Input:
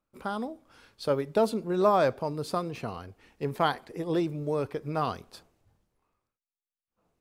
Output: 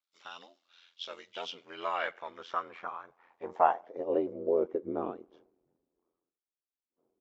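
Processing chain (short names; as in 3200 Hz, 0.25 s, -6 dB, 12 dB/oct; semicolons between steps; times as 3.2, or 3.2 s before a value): nonlinear frequency compression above 1900 Hz 1.5:1; bell 69 Hz -9 dB 3 oct; ring modulator 43 Hz; band-pass sweep 3800 Hz -> 340 Hz, 1.18–4.9; gain +8.5 dB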